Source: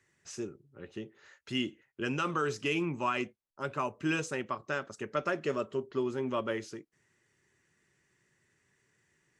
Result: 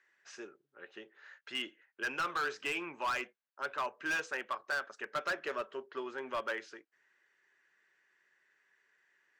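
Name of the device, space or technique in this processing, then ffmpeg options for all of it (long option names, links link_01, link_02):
megaphone: -af "highpass=620,lowpass=3900,equalizer=frequency=1600:width_type=o:width=0.32:gain=7.5,asoftclip=type=hard:threshold=-29.5dB"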